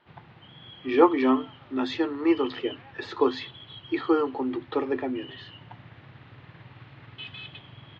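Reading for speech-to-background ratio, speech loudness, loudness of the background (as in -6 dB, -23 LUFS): 19.5 dB, -26.0 LUFS, -45.5 LUFS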